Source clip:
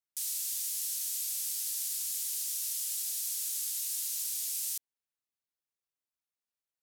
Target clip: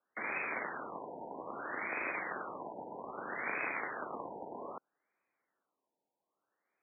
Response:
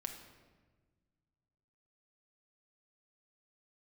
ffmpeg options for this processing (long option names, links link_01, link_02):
-filter_complex "[0:a]asettb=1/sr,asplit=3[link_01][link_02][link_03];[link_01]atrim=end=3.464[link_04];[link_02]atrim=start=3.46:end=4.47,asetpts=PTS-STARTPTS,afade=type=in:duration=0.004:curve=qsin,afade=type=out:start_time=1.006:duration=0.004:curve=qsin,asplit=2[link_05][link_06];[link_06]adelay=35,volume=-13.5dB[link_07];[link_05][link_07]amix=inputs=2:normalize=0,atrim=end_sample=44541[link_08];[link_03]atrim=start=4.466[link_09];[link_04][link_08]acrossfade=duration=0.004:curve1=hsin:curve2=qsin[link_10];[link_10][link_09]acrossfade=duration=0.004:curve1=qsin:curve2=hsin,aeval=exprs='0.0794*(cos(1*acos(clip(val(0)/0.0794,-1,1)))-cos(1*PI/2))+0.0316*(cos(5*acos(clip(val(0)/0.0794,-1,1)))-cos(5*PI/2))+0.0224*(cos(7*acos(clip(val(0)/0.0794,-1,1)))-cos(7*PI/2))':channel_layout=same,highpass=frequency=370:width_type=q:width=0.5412,highpass=frequency=370:width_type=q:width=1.307,lowpass=frequency=3500:width_type=q:width=0.5176,lowpass=frequency=3500:width_type=q:width=0.7071,lowpass=frequency=3500:width_type=q:width=1.932,afreqshift=-120,afftfilt=real='re*lt(b*sr/1024,960*pow(2600/960,0.5+0.5*sin(2*PI*0.62*pts/sr)))':imag='im*lt(b*sr/1024,960*pow(2600/960,0.5+0.5*sin(2*PI*0.62*pts/sr)))':win_size=1024:overlap=0.75,volume=18dB"